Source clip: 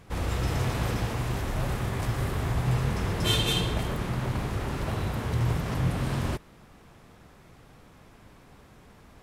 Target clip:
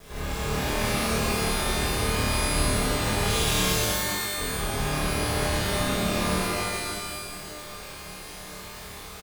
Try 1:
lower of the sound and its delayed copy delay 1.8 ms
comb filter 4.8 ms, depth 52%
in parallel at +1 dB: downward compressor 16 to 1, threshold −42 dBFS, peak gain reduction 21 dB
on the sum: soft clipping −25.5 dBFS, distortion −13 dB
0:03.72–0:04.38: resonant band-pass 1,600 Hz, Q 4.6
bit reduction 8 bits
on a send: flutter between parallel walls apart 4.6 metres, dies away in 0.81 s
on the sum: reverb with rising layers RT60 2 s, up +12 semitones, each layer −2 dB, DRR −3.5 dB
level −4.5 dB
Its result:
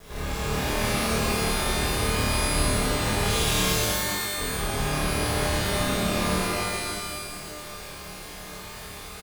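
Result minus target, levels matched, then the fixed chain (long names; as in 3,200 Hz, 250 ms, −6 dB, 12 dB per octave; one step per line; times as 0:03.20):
downward compressor: peak gain reduction −9.5 dB
lower of the sound and its delayed copy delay 1.8 ms
comb filter 4.8 ms, depth 52%
in parallel at +1 dB: downward compressor 16 to 1, threshold −52 dBFS, peak gain reduction 30 dB
on the sum: soft clipping −25.5 dBFS, distortion −14 dB
0:03.72–0:04.38: resonant band-pass 1,600 Hz, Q 4.6
bit reduction 8 bits
on a send: flutter between parallel walls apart 4.6 metres, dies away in 0.81 s
on the sum: reverb with rising layers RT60 2 s, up +12 semitones, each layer −2 dB, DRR −3.5 dB
level −4.5 dB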